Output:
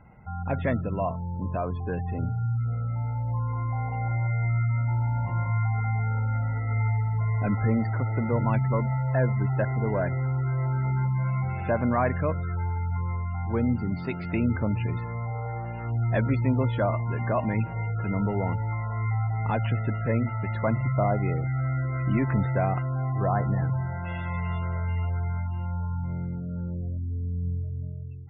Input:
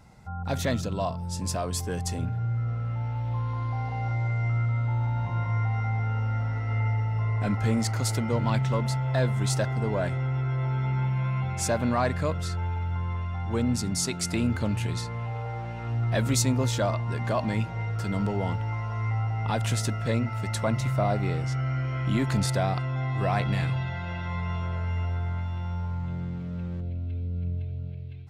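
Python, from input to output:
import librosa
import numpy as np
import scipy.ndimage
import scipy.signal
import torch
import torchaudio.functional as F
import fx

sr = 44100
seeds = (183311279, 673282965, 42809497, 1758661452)

y = fx.lowpass(x, sr, hz=fx.steps((0.0, 2800.0), (22.82, 1600.0), (24.05, 3700.0)), slope=24)
y = fx.spec_gate(y, sr, threshold_db=-30, keep='strong')
y = y * 10.0 ** (1.0 / 20.0)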